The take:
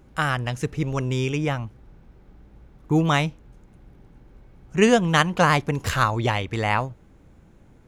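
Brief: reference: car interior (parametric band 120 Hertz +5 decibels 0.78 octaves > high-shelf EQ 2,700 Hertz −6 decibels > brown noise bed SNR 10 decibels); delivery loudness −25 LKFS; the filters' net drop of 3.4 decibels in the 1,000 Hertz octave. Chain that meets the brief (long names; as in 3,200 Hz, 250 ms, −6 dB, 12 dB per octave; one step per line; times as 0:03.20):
parametric band 120 Hz +5 dB 0.78 octaves
parametric band 1,000 Hz −3.5 dB
high-shelf EQ 2,700 Hz −6 dB
brown noise bed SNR 10 dB
level −2.5 dB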